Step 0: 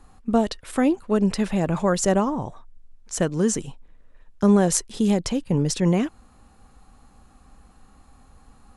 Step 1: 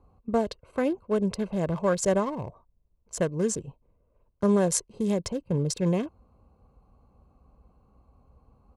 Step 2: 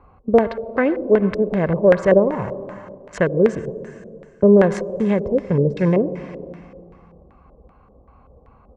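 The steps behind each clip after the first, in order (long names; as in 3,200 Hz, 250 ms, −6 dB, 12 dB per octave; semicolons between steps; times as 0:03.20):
adaptive Wiener filter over 25 samples; high-pass filter 53 Hz 12 dB per octave; comb filter 1.9 ms, depth 43%; level −4 dB
convolution reverb RT60 2.1 s, pre-delay 66 ms, DRR 12 dB; auto-filter low-pass square 2.6 Hz 520–1,900 Hz; one half of a high-frequency compander encoder only; level +7 dB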